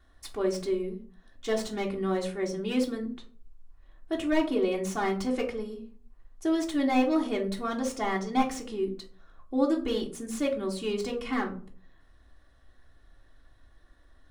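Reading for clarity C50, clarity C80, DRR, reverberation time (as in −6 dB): 11.5 dB, 16.0 dB, −3.0 dB, 0.45 s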